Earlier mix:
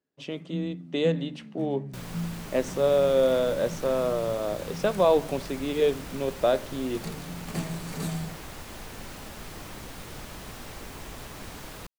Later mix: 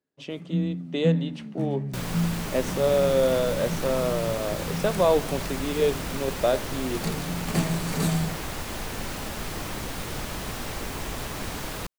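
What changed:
first sound +7.0 dB
second sound +8.0 dB

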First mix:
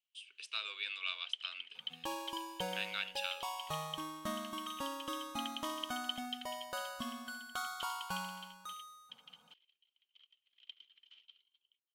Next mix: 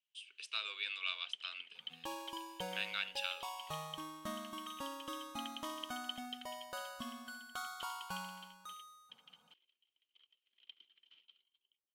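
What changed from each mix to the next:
first sound: add spectral tilt −2.5 dB per octave
second sound −3.5 dB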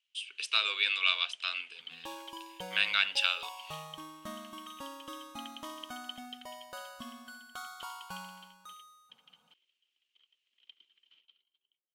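speech +11.5 dB

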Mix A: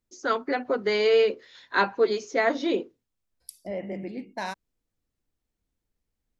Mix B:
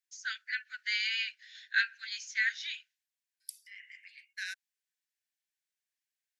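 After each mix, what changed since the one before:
master: add Chebyshev high-pass filter 1,500 Hz, order 8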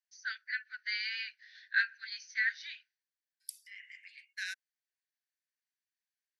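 first voice: add Chebyshev low-pass with heavy ripple 6,200 Hz, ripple 9 dB

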